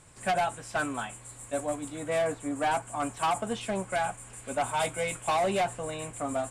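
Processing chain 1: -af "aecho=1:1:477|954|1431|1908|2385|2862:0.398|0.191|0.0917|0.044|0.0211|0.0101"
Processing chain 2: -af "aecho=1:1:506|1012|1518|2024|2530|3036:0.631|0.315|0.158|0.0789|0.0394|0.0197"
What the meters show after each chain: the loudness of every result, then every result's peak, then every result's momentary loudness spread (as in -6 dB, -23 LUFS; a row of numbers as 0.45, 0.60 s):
-30.0, -29.5 LUFS; -18.5, -16.5 dBFS; 6, 5 LU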